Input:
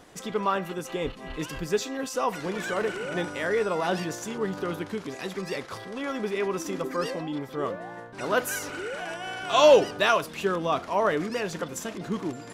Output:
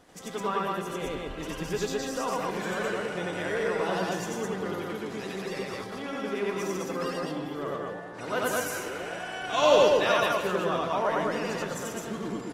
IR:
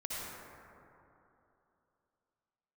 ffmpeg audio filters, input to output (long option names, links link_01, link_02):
-filter_complex "[0:a]aecho=1:1:90.38|209.9:1|0.891,asplit=2[link_01][link_02];[1:a]atrim=start_sample=2205,adelay=75[link_03];[link_02][link_03]afir=irnorm=-1:irlink=0,volume=-13dB[link_04];[link_01][link_04]amix=inputs=2:normalize=0,volume=-6.5dB" -ar 48000 -c:a aac -b:a 48k